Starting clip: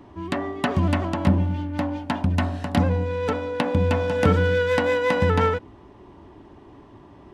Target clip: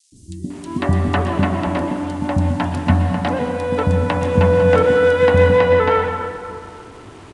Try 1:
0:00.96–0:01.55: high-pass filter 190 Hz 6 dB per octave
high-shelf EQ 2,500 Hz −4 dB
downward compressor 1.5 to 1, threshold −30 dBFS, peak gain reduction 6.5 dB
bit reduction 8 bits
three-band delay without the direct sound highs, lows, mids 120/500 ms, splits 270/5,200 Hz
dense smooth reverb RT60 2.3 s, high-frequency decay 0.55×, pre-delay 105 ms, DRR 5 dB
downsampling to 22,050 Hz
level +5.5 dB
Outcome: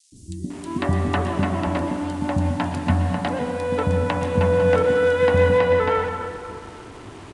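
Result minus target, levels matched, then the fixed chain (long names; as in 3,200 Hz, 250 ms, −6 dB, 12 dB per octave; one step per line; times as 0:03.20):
downward compressor: peak gain reduction +6.5 dB
0:00.96–0:01.55: high-pass filter 190 Hz 6 dB per octave
high-shelf EQ 2,500 Hz −4 dB
bit reduction 8 bits
three-band delay without the direct sound highs, lows, mids 120/500 ms, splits 270/5,200 Hz
dense smooth reverb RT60 2.3 s, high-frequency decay 0.55×, pre-delay 105 ms, DRR 5 dB
downsampling to 22,050 Hz
level +5.5 dB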